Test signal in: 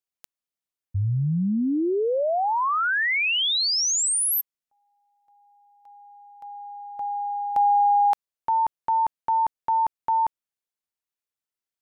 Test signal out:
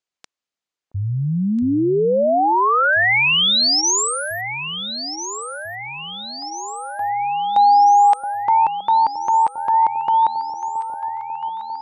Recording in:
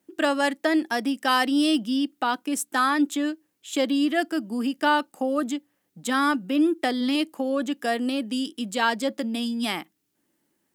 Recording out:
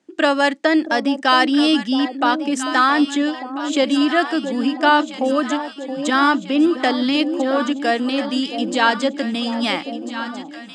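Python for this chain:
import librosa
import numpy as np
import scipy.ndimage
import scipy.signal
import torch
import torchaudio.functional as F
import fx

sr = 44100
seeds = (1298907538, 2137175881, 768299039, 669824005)

y = scipy.signal.sosfilt(scipy.signal.butter(4, 7100.0, 'lowpass', fs=sr, output='sos'), x)
y = fx.low_shelf(y, sr, hz=130.0, db=-10.0)
y = fx.notch(y, sr, hz=5600.0, q=22.0)
y = fx.echo_alternate(y, sr, ms=672, hz=840.0, feedback_pct=76, wet_db=-9)
y = F.gain(torch.from_numpy(y), 7.0).numpy()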